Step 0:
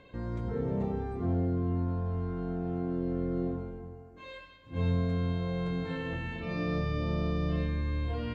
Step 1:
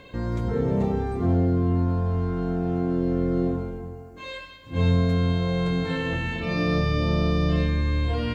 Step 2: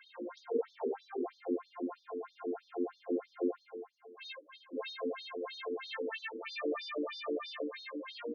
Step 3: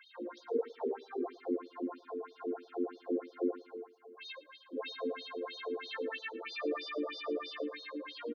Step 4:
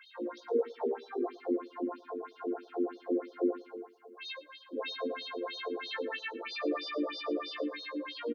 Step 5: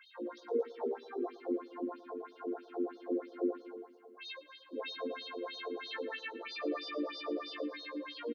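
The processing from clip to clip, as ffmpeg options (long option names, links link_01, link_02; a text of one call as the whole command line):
ffmpeg -i in.wav -af "highshelf=frequency=4600:gain=10.5,volume=8dB" out.wav
ffmpeg -i in.wav -af "afftfilt=real='re*between(b*sr/1024,340*pow(4800/340,0.5+0.5*sin(2*PI*3.1*pts/sr))/1.41,340*pow(4800/340,0.5+0.5*sin(2*PI*3.1*pts/sr))*1.41)':imag='im*between(b*sr/1024,340*pow(4800/340,0.5+0.5*sin(2*PI*3.1*pts/sr))/1.41,340*pow(4800/340,0.5+0.5*sin(2*PI*3.1*pts/sr))*1.41)':win_size=1024:overlap=0.75,volume=-3.5dB" out.wav
ffmpeg -i in.wav -af "aecho=1:1:112|224:0.126|0.029" out.wav
ffmpeg -i in.wav -filter_complex "[0:a]asplit=2[link_01][link_02];[link_02]adelay=17,volume=-8.5dB[link_03];[link_01][link_03]amix=inputs=2:normalize=0,volume=2.5dB" out.wav
ffmpeg -i in.wav -af "aecho=1:1:230|460|690:0.112|0.0393|0.0137,volume=-3.5dB" out.wav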